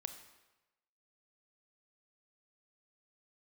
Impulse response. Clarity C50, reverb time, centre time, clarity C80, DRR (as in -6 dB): 9.5 dB, 1.1 s, 16 ms, 11.0 dB, 7.5 dB